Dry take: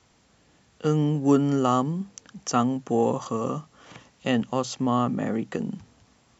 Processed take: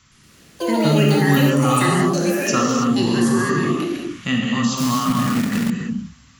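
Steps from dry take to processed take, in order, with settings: high-order bell 530 Hz -15 dB; gated-style reverb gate 350 ms flat, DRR -2 dB; in parallel at +2 dB: peak limiter -20.5 dBFS, peak gain reduction 10 dB; on the sum: ever faster or slower copies 117 ms, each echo +7 st, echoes 3; 4.77–5.70 s: companded quantiser 4-bit

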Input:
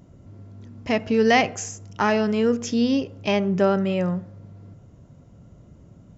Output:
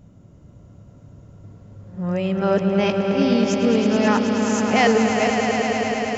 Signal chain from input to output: reverse the whole clip; on a send: echo with a slow build-up 107 ms, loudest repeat 5, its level -8.5 dB

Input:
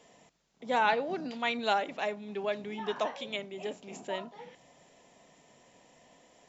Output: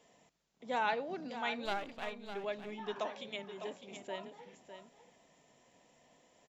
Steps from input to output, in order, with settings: 1.65–2.34 s: partial rectifier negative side -12 dB; delay 605 ms -10 dB; trim -6.5 dB

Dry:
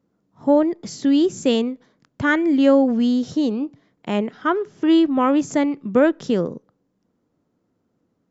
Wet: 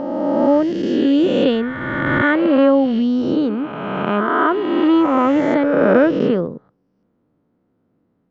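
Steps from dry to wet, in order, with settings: reverse spectral sustain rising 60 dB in 2.33 s; distance through air 290 m; trim +1 dB

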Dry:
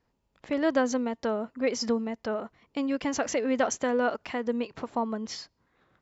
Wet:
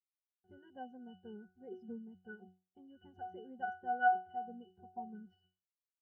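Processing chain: send-on-delta sampling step -43 dBFS; pitch-class resonator F#, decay 0.44 s; spectral contrast expander 1.5:1; trim +11 dB

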